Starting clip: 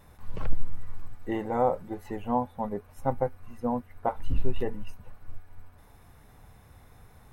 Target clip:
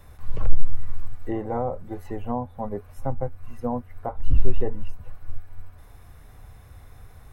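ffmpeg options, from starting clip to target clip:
ffmpeg -i in.wav -filter_complex "[0:a]equalizer=frequency=180:width=1.2:gain=-7.5,bandreject=frequency=890:width=12,acrossover=split=200|1300[link_01][link_02][link_03];[link_01]acontrast=53[link_04];[link_02]alimiter=limit=-22dB:level=0:latency=1:release=329[link_05];[link_03]acompressor=threshold=-56dB:ratio=6[link_06];[link_04][link_05][link_06]amix=inputs=3:normalize=0,volume=3.5dB" out.wav

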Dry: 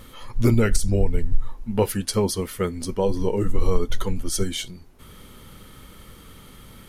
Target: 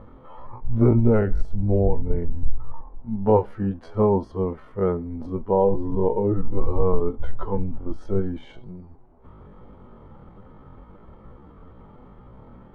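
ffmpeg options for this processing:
ffmpeg -i in.wav -af "atempo=0.54,lowpass=frequency=870:width_type=q:width=1.9" out.wav

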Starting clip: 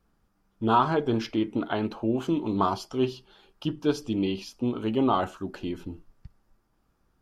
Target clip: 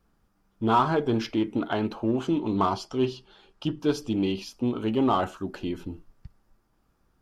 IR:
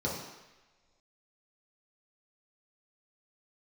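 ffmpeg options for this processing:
-filter_complex "[0:a]asettb=1/sr,asplit=3[link_01][link_02][link_03];[link_01]atrim=end=2.034[link_04];[link_02]atrim=start=2.03:end=3.8,asetpts=PTS-STARTPTS,afade=type=in:duration=0.004:curve=qsin,afade=type=out:start_time=1.766:duration=0.004:curve=qsin,lowpass=8900[link_05];[link_03]atrim=start=3.796[link_06];[link_04][link_05]acrossfade=duration=0.004:curve1=hsin:curve2=qsin[link_07];[link_07][link_06]acrossfade=duration=0.004:curve1=qsin:curve2=hsin,asplit=2[link_08][link_09];[link_09]asoftclip=type=hard:threshold=-23.5dB,volume=-8dB[link_10];[link_08][link_10]amix=inputs=2:normalize=0,volume=-1.5dB"

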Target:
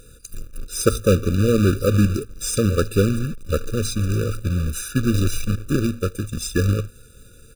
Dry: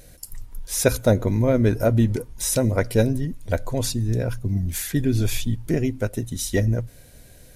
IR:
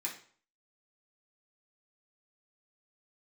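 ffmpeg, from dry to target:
-af "asetrate=39289,aresample=44100,atempo=1.12246,acrusher=bits=2:mode=log:mix=0:aa=0.000001,afftfilt=real='re*eq(mod(floor(b*sr/1024/580),2),0)':imag='im*eq(mod(floor(b*sr/1024/580),2),0)':win_size=1024:overlap=0.75,volume=1.5dB"

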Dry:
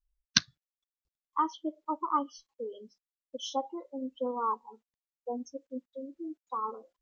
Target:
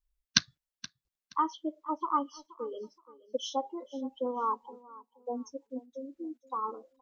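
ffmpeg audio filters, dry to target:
ffmpeg -i in.wav -filter_complex "[0:a]asplit=3[link_01][link_02][link_03];[link_01]afade=type=out:start_time=2.71:duration=0.02[link_04];[link_02]equalizer=frequency=470:width=1:gain=9,afade=type=in:start_time=2.71:duration=0.02,afade=type=out:start_time=3.46:duration=0.02[link_05];[link_03]afade=type=in:start_time=3.46:duration=0.02[link_06];[link_04][link_05][link_06]amix=inputs=3:normalize=0,asplit=2[link_07][link_08];[link_08]aecho=0:1:474|948:0.106|0.0286[link_09];[link_07][link_09]amix=inputs=2:normalize=0" out.wav

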